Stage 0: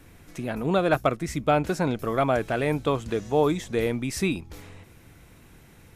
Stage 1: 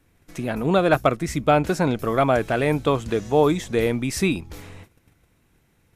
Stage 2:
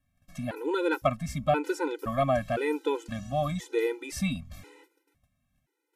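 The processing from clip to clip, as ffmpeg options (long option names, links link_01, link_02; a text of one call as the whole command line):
ffmpeg -i in.wav -af "agate=range=-15dB:threshold=-47dB:ratio=16:detection=peak,volume=4dB" out.wav
ffmpeg -i in.wav -af "agate=range=-7dB:threshold=-59dB:ratio=16:detection=peak,afftfilt=real='re*gt(sin(2*PI*0.97*pts/sr)*(1-2*mod(floor(b*sr/1024/260),2)),0)':imag='im*gt(sin(2*PI*0.97*pts/sr)*(1-2*mod(floor(b*sr/1024/260),2)),0)':win_size=1024:overlap=0.75,volume=-5dB" out.wav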